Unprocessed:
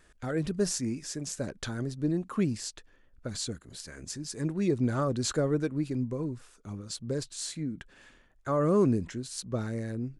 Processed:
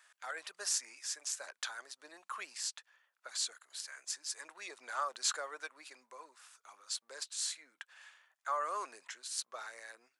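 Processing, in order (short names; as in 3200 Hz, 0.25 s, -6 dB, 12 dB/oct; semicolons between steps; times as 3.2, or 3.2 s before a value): HPF 850 Hz 24 dB/oct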